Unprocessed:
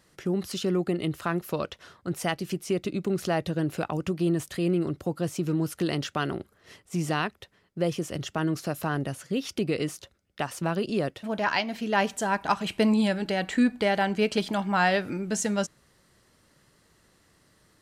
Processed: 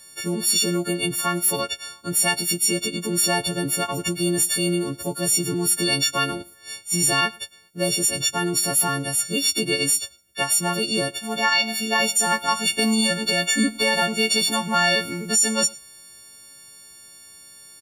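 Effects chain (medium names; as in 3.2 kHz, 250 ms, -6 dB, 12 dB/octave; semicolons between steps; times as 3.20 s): partials quantised in pitch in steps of 4 st; treble shelf 3.6 kHz +10 dB; peak limiter -11.5 dBFS, peak gain reduction 11 dB; delay 106 ms -23.5 dB; trim +1.5 dB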